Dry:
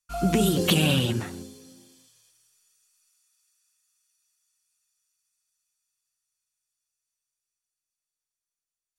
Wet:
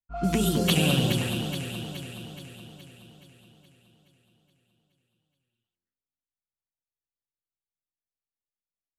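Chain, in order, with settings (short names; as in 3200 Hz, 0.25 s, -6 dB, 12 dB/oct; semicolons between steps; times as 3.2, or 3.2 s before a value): low-pass opened by the level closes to 520 Hz, open at -21 dBFS; bell 410 Hz -3 dB 1.2 oct; on a send: echo with dull and thin repeats by turns 0.211 s, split 1300 Hz, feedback 74%, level -4 dB; on the sum: gain -1.5 dB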